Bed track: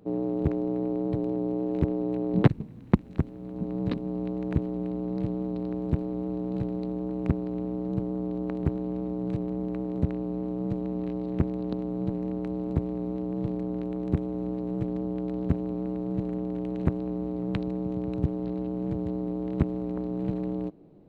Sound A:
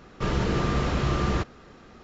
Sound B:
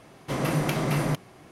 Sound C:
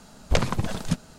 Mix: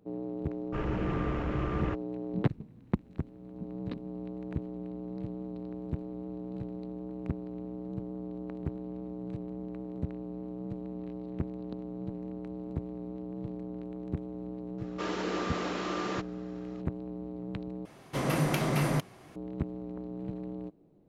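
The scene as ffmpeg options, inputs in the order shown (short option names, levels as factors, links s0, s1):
-filter_complex "[1:a]asplit=2[s0][s1];[0:a]volume=0.376[s2];[s0]afwtdn=0.0224[s3];[s1]highpass=f=270:w=0.5412,highpass=f=270:w=1.3066[s4];[s2]asplit=2[s5][s6];[s5]atrim=end=17.854[s7];[2:a]atrim=end=1.51,asetpts=PTS-STARTPTS,volume=0.75[s8];[s6]atrim=start=19.356[s9];[s3]atrim=end=2.03,asetpts=PTS-STARTPTS,volume=0.422,afade=t=in:d=0.004:c=hsin,afade=t=out:st=2.026:d=0.004:c=hsin,adelay=520[s10];[s4]atrim=end=2.03,asetpts=PTS-STARTPTS,volume=0.562,afade=t=in:d=0.004:c=hsin,afade=t=out:st=2.026:d=0.004:c=hsin,adelay=14780[s11];[s7][s8]acrossfade=d=0.004:c1=hsin:c2=hsin[s12];[s12][s9]acrossfade=d=0.004:c1=hsin:c2=hsin[s13];[s13][s10][s11]amix=inputs=3:normalize=0"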